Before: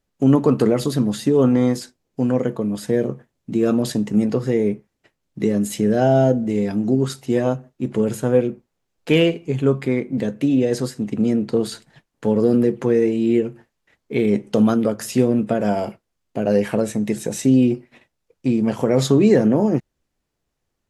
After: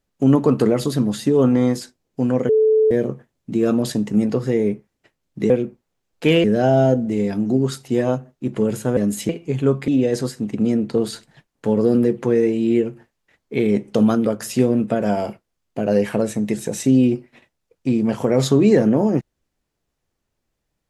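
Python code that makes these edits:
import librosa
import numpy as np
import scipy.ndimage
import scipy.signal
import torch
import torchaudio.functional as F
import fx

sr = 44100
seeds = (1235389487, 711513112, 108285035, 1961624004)

y = fx.edit(x, sr, fx.bleep(start_s=2.49, length_s=0.42, hz=436.0, db=-11.5),
    fx.swap(start_s=5.5, length_s=0.32, other_s=8.35, other_length_s=0.94),
    fx.cut(start_s=9.88, length_s=0.59), tone=tone)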